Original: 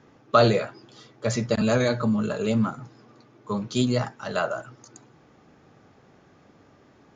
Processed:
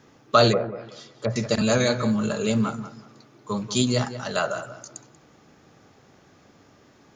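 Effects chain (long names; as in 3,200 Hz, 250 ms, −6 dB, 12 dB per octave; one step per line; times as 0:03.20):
high-shelf EQ 4,200 Hz +12 dB
feedback echo with a low-pass in the loop 187 ms, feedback 25%, low-pass 3,300 Hz, level −12 dB
0:00.52–0:01.36: treble cut that deepens with the level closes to 970 Hz, closed at −23.5 dBFS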